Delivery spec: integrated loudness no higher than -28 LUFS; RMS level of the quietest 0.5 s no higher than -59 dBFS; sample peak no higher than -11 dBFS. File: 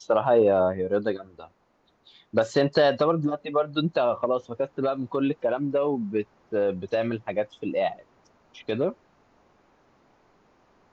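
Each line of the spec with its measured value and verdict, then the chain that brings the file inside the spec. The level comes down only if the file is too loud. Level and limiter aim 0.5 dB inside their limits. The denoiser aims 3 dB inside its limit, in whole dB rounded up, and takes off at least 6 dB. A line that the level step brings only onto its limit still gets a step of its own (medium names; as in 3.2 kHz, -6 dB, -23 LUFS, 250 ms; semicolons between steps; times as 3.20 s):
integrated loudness -25.5 LUFS: fail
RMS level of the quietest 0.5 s -66 dBFS: pass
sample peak -9.5 dBFS: fail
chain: trim -3 dB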